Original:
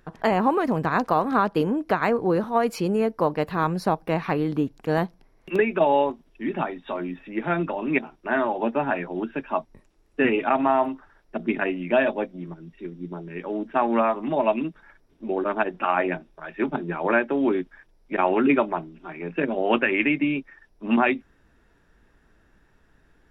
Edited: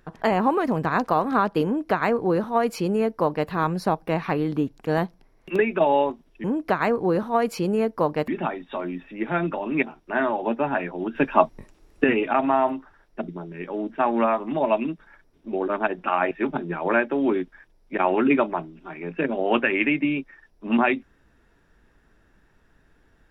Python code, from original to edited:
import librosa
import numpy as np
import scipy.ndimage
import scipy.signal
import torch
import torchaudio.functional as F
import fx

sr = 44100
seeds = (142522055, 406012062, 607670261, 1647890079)

y = fx.edit(x, sr, fx.duplicate(start_s=1.65, length_s=1.84, to_s=6.44),
    fx.clip_gain(start_s=9.31, length_s=0.89, db=8.5),
    fx.cut(start_s=11.44, length_s=1.6),
    fx.cut(start_s=16.07, length_s=0.43), tone=tone)